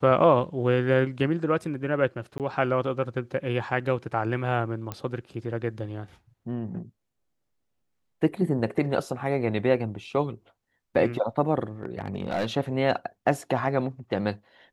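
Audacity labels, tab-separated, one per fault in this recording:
2.380000	2.400000	dropout 18 ms
4.920000	4.920000	pop -17 dBFS
11.830000	12.460000	clipped -22.5 dBFS

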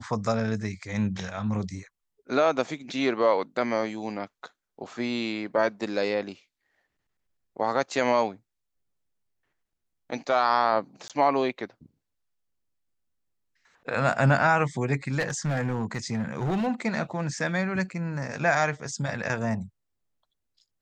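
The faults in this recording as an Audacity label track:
11.080000	11.100000	dropout 17 ms
15.190000	16.680000	clipped -23 dBFS

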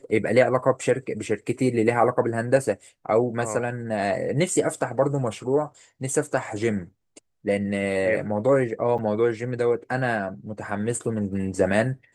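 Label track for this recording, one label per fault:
8.980000	8.990000	dropout 6.7 ms

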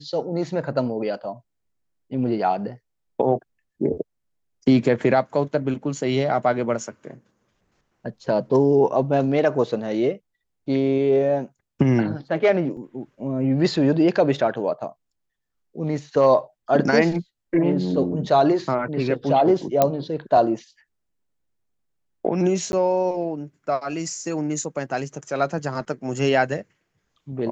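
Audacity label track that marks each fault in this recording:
12.770000	12.770000	dropout 3.2 ms
19.820000	19.820000	pop -4 dBFS
22.720000	22.730000	dropout 11 ms

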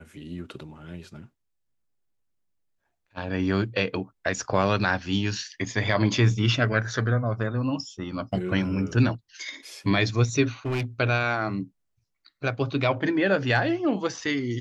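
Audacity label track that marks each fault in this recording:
10.650000	10.850000	clipped -24 dBFS

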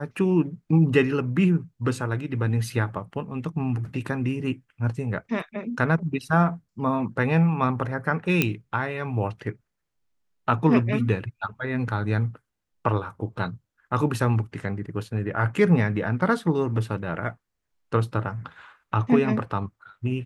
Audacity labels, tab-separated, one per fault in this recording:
8.420000	8.420000	pop -6 dBFS

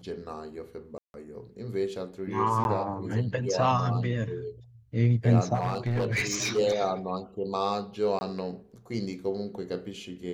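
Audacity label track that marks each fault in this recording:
0.980000	1.140000	dropout 161 ms
2.640000	2.650000	dropout 11 ms
5.540000	6.590000	clipped -23.5 dBFS
8.190000	8.210000	dropout 20 ms

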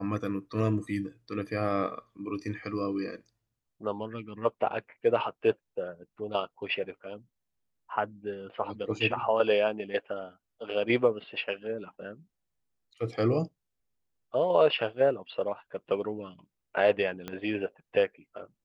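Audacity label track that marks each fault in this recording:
17.280000	17.280000	pop -21 dBFS

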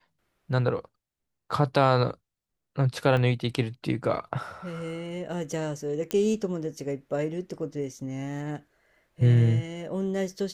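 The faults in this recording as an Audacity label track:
3.170000	3.170000	dropout 2.3 ms
6.110000	6.110000	pop -13 dBFS

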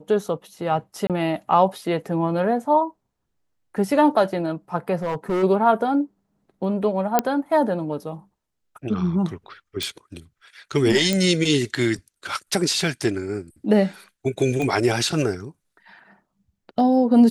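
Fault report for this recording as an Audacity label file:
1.070000	1.100000	dropout 27 ms
5.020000	5.440000	clipped -20 dBFS
7.190000	7.190000	pop -3 dBFS
9.830000	9.830000	pop
11.130000	11.130000	pop -8 dBFS
14.620000	14.620000	pop -15 dBFS

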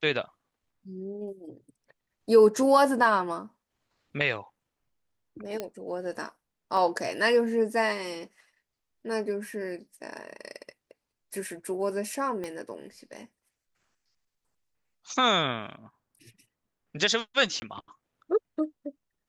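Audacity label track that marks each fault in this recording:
5.600000	5.600000	pop -18 dBFS
6.770000	6.770000	dropout 2.1 ms
12.440000	12.440000	pop -23 dBFS
17.600000	17.620000	dropout 20 ms

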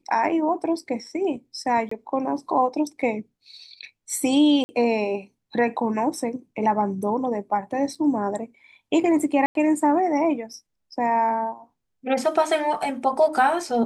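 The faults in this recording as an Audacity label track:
1.890000	1.910000	dropout 24 ms
4.640000	4.690000	dropout 50 ms
7.950000	7.960000	dropout 5.3 ms
9.460000	9.550000	dropout 92 ms

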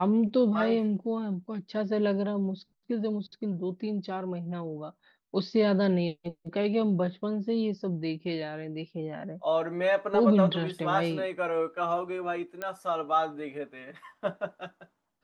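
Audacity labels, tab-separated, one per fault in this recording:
12.620000	12.620000	pop -20 dBFS

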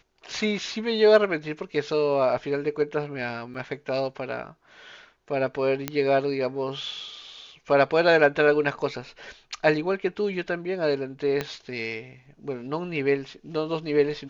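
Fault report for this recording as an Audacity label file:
3.540000	3.540000	dropout 4.5 ms
5.880000	5.880000	pop -10 dBFS
11.410000	11.410000	pop -13 dBFS

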